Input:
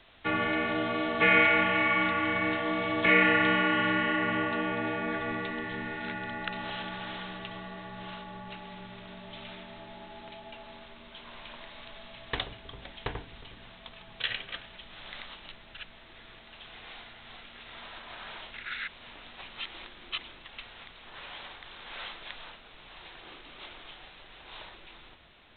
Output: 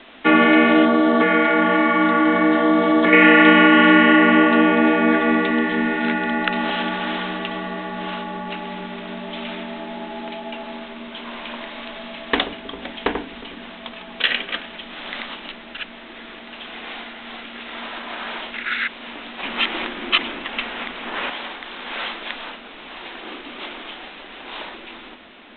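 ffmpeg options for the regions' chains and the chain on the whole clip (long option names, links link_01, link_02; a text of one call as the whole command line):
ffmpeg -i in.wav -filter_complex "[0:a]asettb=1/sr,asplit=3[link_01][link_02][link_03];[link_01]atrim=end=0.854[link_04];[link_02]atrim=start=0.85:end=3.13,asetpts=PTS-STARTPTS,afade=type=in:duration=0.004:curve=qsin,afade=type=out:start_time=2.276:duration=0.004:curve=qsin,equalizer=frequency=2500:width_type=o:width=0.53:gain=-13,acompressor=threshold=-27dB:ratio=6:attack=3.2:release=140:knee=1:detection=peak[link_05];[link_03]atrim=start=3.126[link_06];[link_04][link_05]acrossfade=duration=0.004:curve1=hsin:curve2=qsin[link_07];[link_07][link_06]acrossfade=duration=0.004:curve1=qsin:curve2=hsin,asettb=1/sr,asplit=3[link_08][link_09][link_10];[link_08]atrim=end=19.434[link_11];[link_09]atrim=start=19.43:end=21.3,asetpts=PTS-STARTPTS,afade=type=in:duration=0.004:curve=qsin,afade=type=out:start_time=1.866:duration=0.004:curve=qsin,lowpass=3600,acontrast=64[link_12];[link_10]atrim=start=21.296[link_13];[link_11][link_12]acrossfade=duration=0.004:curve1=hsin:curve2=qsin[link_14];[link_14][link_13]acrossfade=duration=0.004:curve1=qsin:curve2=hsin,lowpass=frequency=3600:width=0.5412,lowpass=frequency=3600:width=1.3066,lowshelf=frequency=170:width_type=q:width=3:gain=-11.5,alimiter=level_in=14.5dB:limit=-1dB:release=50:level=0:latency=1,volume=-1dB" out.wav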